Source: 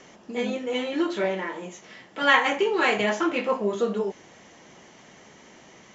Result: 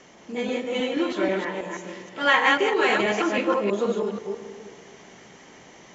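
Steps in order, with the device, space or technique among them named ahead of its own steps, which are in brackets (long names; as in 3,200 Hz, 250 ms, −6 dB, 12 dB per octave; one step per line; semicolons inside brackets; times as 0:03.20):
delay that plays each chunk backwards 161 ms, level −1.5 dB
compressed reverb return (on a send at −6 dB: convolution reverb RT60 1.5 s, pre-delay 98 ms + downward compressor, threshold −28 dBFS, peak gain reduction 12.5 dB)
on the sum: level −1 dB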